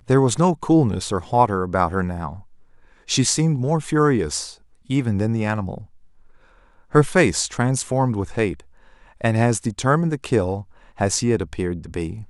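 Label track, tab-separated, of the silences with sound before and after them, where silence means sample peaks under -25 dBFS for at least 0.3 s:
2.330000	3.100000	silence
4.450000	4.900000	silence
5.780000	6.950000	silence
8.530000	9.240000	silence
10.610000	11.000000	silence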